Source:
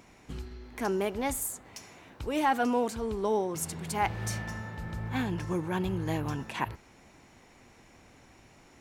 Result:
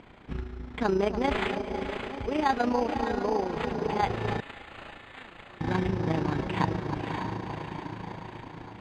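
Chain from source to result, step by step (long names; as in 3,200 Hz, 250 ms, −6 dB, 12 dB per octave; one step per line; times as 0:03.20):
on a send: feedback delay with all-pass diffusion 568 ms, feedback 49%, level −5.5 dB
on the sum: speech leveller within 5 dB 2 s
delay that swaps between a low-pass and a high-pass 295 ms, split 1,300 Hz, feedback 76%, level −10 dB
amplitude modulation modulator 28 Hz, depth 45%
0:04.40–0:05.61: first difference
bad sample-rate conversion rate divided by 8×, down none, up hold
low-pass filter 3,000 Hz 12 dB per octave
level +4 dB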